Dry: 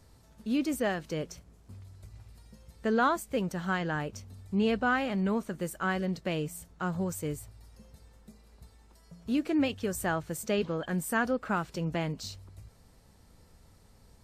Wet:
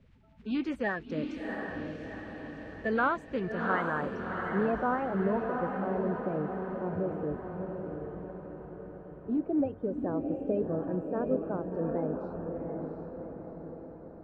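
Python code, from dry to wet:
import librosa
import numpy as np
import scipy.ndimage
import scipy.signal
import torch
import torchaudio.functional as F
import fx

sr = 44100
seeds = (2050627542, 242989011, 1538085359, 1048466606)

y = fx.spec_quant(x, sr, step_db=30)
y = fx.filter_sweep_lowpass(y, sr, from_hz=2400.0, to_hz=550.0, start_s=3.33, end_s=5.87, q=1.3)
y = fx.echo_diffused(y, sr, ms=725, feedback_pct=56, wet_db=-4.0)
y = y * librosa.db_to_amplitude(-2.0)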